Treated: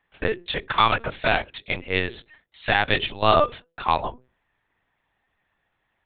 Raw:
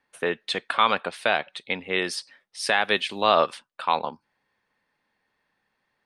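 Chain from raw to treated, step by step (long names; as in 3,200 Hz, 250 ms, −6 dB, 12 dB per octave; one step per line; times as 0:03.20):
high-pass filter 44 Hz 24 dB per octave
mains-hum notches 50/100/150/200/250/300/350/400/450/500 Hz
linear-prediction vocoder at 8 kHz pitch kept
level +2 dB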